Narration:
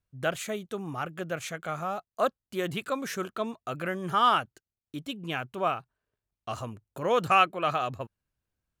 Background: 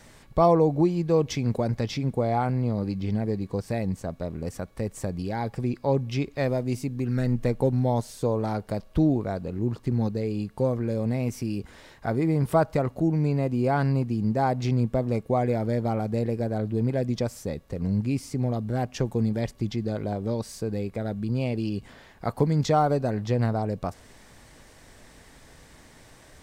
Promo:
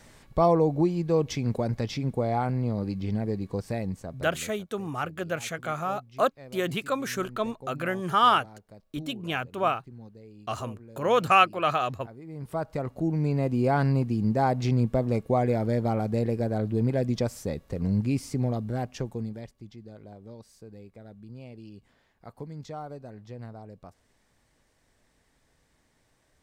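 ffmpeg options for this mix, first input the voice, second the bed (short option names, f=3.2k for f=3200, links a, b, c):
-filter_complex "[0:a]adelay=4000,volume=2.5dB[a];[1:a]volume=18.5dB,afade=t=out:st=3.68:d=0.93:silence=0.11885,afade=t=in:st=12.25:d=1.29:silence=0.0944061,afade=t=out:st=18.34:d=1.2:silence=0.141254[b];[a][b]amix=inputs=2:normalize=0"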